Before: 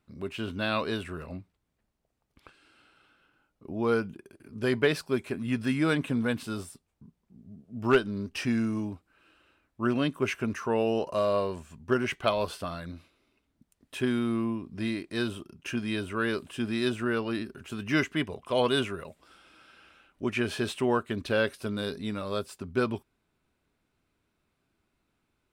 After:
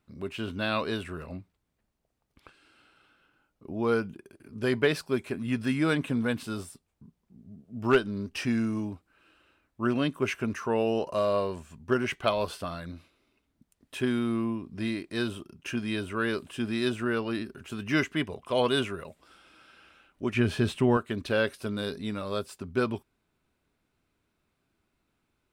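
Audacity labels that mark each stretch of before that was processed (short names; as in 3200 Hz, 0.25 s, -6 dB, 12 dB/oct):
20.340000	20.970000	tone controls bass +10 dB, treble -3 dB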